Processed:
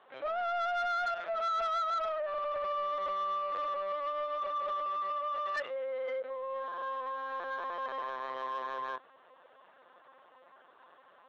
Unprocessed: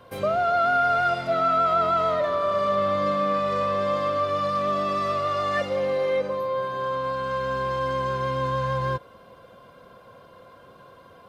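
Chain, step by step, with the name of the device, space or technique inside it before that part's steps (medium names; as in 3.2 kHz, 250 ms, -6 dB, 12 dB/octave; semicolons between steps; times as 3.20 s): talking toy (LPC vocoder at 8 kHz pitch kept; high-pass 530 Hz 12 dB/octave; peaking EQ 1.7 kHz +5 dB 0.48 oct; saturation -20 dBFS, distortion -15 dB); trim -8 dB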